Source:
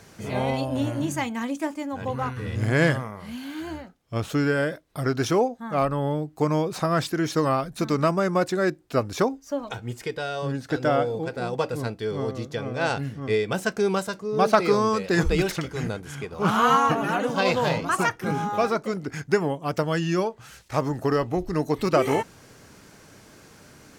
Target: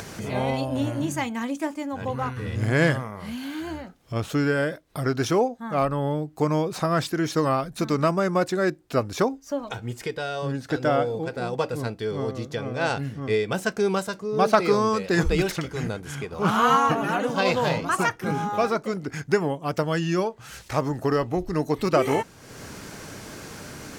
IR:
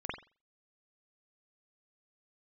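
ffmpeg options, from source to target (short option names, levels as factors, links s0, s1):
-af "acompressor=mode=upward:threshold=0.0398:ratio=2.5"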